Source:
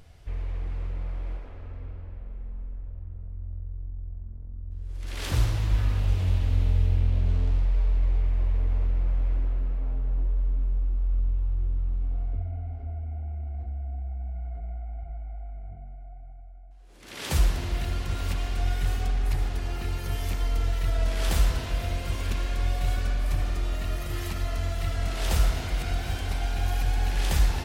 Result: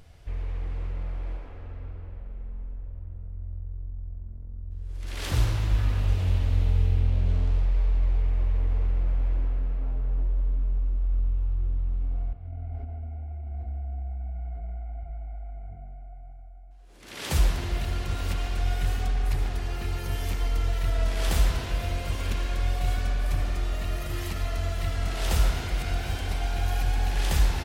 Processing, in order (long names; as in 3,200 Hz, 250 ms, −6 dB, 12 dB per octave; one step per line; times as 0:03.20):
0:12.33–0:13.53: compressor whose output falls as the input rises −34 dBFS, ratio −0.5
far-end echo of a speakerphone 140 ms, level −7 dB